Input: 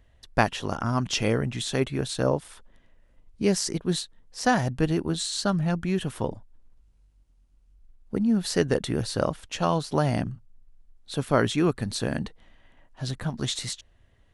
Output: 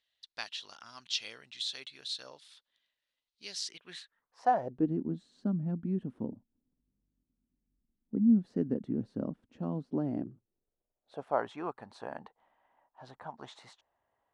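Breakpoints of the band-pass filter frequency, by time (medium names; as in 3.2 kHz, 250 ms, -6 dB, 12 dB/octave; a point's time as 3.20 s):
band-pass filter, Q 3.2
3.60 s 4 kHz
4.41 s 920 Hz
4.91 s 240 Hz
9.81 s 240 Hz
11.47 s 870 Hz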